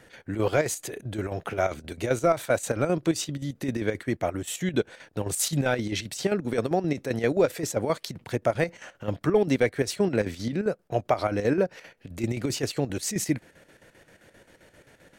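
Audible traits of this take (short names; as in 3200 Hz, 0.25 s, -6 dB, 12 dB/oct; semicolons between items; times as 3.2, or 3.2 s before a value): chopped level 7.6 Hz, depth 60%, duty 65%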